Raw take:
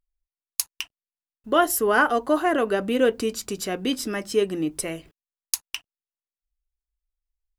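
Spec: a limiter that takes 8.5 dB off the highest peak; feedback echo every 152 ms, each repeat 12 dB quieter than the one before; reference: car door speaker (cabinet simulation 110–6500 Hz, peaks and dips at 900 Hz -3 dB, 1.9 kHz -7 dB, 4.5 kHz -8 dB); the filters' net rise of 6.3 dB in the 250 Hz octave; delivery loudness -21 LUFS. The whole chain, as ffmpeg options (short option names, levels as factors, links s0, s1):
-af "equalizer=f=250:t=o:g=8,alimiter=limit=0.282:level=0:latency=1,highpass=110,equalizer=f=900:t=q:w=4:g=-3,equalizer=f=1900:t=q:w=4:g=-7,equalizer=f=4500:t=q:w=4:g=-8,lowpass=f=6500:w=0.5412,lowpass=f=6500:w=1.3066,aecho=1:1:152|304|456:0.251|0.0628|0.0157,volume=1.19"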